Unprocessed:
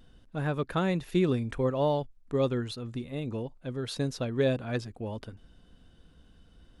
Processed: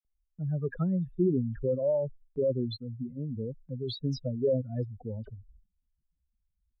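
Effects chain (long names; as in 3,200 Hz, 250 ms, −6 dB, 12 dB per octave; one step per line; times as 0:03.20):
expanding power law on the bin magnitudes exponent 3.4
all-pass dispersion lows, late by 49 ms, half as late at 2,200 Hz
noise gate with hold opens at −47 dBFS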